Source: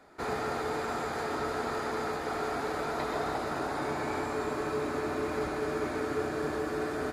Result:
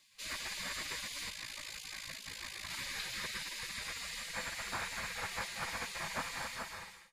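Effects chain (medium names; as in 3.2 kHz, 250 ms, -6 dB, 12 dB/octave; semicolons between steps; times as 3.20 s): fade out at the end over 0.73 s; 1.30–2.70 s: AM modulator 54 Hz, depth 75%; feedback comb 740 Hz, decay 0.24 s, mix 70%; spectral gate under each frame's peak -20 dB weak; trim +15.5 dB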